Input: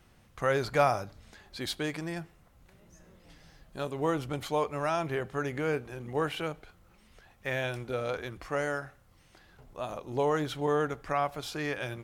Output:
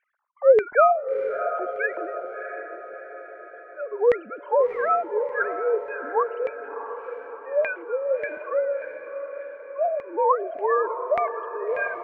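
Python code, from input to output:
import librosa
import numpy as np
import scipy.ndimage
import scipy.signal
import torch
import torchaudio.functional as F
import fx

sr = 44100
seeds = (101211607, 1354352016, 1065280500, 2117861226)

y = fx.sine_speech(x, sr)
y = fx.noise_reduce_blind(y, sr, reduce_db=12)
y = fx.filter_lfo_lowpass(y, sr, shape='saw_down', hz=1.7, low_hz=520.0, high_hz=2100.0, q=4.7)
y = fx.echo_diffused(y, sr, ms=675, feedback_pct=53, wet_db=-9)
y = y * 10.0 ** (2.5 / 20.0)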